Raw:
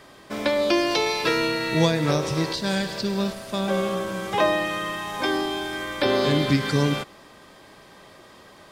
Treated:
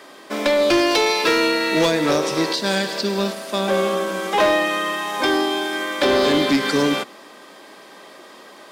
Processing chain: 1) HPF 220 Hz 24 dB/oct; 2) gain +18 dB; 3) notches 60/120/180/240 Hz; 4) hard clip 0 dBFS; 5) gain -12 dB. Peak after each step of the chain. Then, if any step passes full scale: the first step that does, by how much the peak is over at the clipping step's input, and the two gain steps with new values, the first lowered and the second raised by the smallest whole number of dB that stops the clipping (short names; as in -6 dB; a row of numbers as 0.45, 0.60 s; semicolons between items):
-8.0, +10.0, +10.0, 0.0, -12.0 dBFS; step 2, 10.0 dB; step 2 +8 dB, step 5 -2 dB